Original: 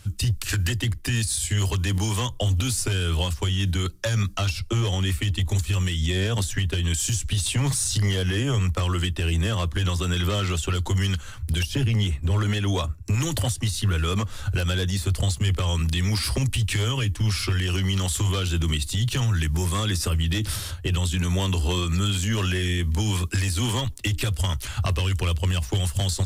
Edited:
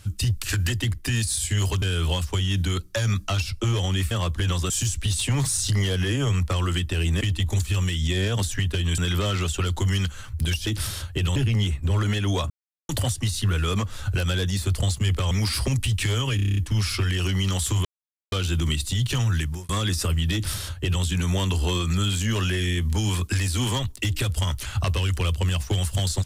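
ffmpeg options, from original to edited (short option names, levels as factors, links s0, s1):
-filter_complex "[0:a]asplit=20[s0][s1][s2][s3][s4][s5][s6][s7][s8][s9][s10][s11][s12][s13][s14][s15][s16][s17][s18][s19];[s0]atrim=end=1.822[s20];[s1]atrim=start=2.908:end=5.202[s21];[s2]atrim=start=9.478:end=10.072[s22];[s3]atrim=start=6.968:end=9.482[s23];[s4]atrim=start=5.198:end=6.972[s24];[s5]atrim=start=10.068:end=11.762[s25];[s6]atrim=start=20.358:end=21.052[s26];[s7]atrim=start=11.758:end=12.9,asetpts=PTS-STARTPTS,afade=t=out:st=1.138:d=0.004:c=hsin[s27];[s8]atrim=start=12.9:end=13.29,asetpts=PTS-STARTPTS,volume=0[s28];[s9]atrim=start=13.29:end=15.712,asetpts=PTS-STARTPTS,afade=t=in:d=0.004:c=hsin[s29];[s10]atrim=start=16.008:end=17.092[s30];[s11]atrim=start=17.058:end=17.092[s31];[s12]atrim=start=17.058:end=17.092[s32];[s13]atrim=start=17.058:end=17.092[s33];[s14]atrim=start=17.058:end=17.092[s34];[s15]atrim=start=17.058:end=17.092[s35];[s16]atrim=start=17.058:end=17.092[s36];[s17]atrim=start=17.058:end=18.34,asetpts=PTS-STARTPTS,afade=t=out:st=1.278:d=0.004:c=hsin,apad=pad_dur=0.47[s37];[s18]atrim=start=18.34:end=19.71,asetpts=PTS-STARTPTS,afade=t=in:d=0.004:c=hsin,afade=t=out:st=1.05:d=0.32[s38];[s19]atrim=start=19.71,asetpts=PTS-STARTPTS,afade=t=in:d=0.004:c=hsin[s39];[s20][s21]acrossfade=d=0.004:c1=hsin:c2=hsin[s40];[s40][s22]acrossfade=d=0.004:c1=hsin:c2=hsin[s41];[s41][s23]acrossfade=d=0.004:c1=hsin:c2=hsin[s42];[s42][s24]acrossfade=d=0.004:c1=hsin:c2=hsin[s43];[s43][s25]acrossfade=d=0.004:c1=hsin:c2=hsin[s44];[s44][s26]acrossfade=d=0.004:c1=hsin:c2=hsin[s45];[s27][s28][s29]concat=n=3:v=0:a=1[s46];[s45][s46]acrossfade=d=0.004:c1=hsin:c2=hsin[s47];[s47][s30]acrossfade=d=0.004:c1=hsin:c2=hsin[s48];[s48][s31]acrossfade=d=0.004:c1=hsin:c2=hsin[s49];[s49][s32]acrossfade=d=0.004:c1=hsin:c2=hsin[s50];[s50][s33]acrossfade=d=0.004:c1=hsin:c2=hsin[s51];[s51][s34]acrossfade=d=0.004:c1=hsin:c2=hsin[s52];[s52][s35]acrossfade=d=0.004:c1=hsin:c2=hsin[s53];[s53][s36]acrossfade=d=0.004:c1=hsin:c2=hsin[s54];[s37][s38][s39]concat=n=3:v=0:a=1[s55];[s54][s55]acrossfade=d=0.004:c1=hsin:c2=hsin"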